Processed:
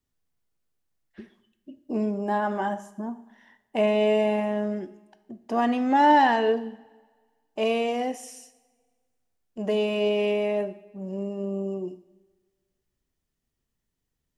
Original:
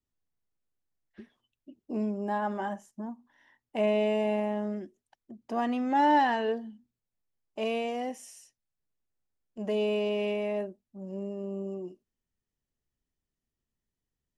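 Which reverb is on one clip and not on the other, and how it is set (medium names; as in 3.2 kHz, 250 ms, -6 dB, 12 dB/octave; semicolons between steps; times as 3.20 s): two-slope reverb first 0.66 s, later 1.7 s, from -16 dB, DRR 11 dB; trim +5.5 dB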